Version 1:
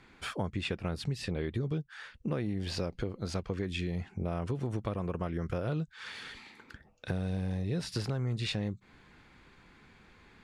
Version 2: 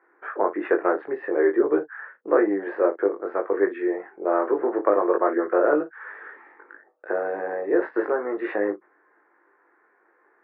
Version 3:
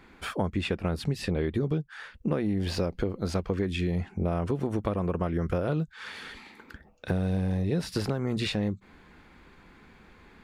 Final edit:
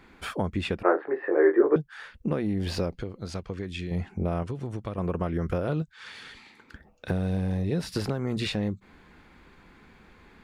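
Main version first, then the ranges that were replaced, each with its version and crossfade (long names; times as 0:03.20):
3
0:00.83–0:01.76: punch in from 2
0:02.95–0:03.91: punch in from 1
0:04.43–0:04.98: punch in from 1
0:05.82–0:06.73: punch in from 1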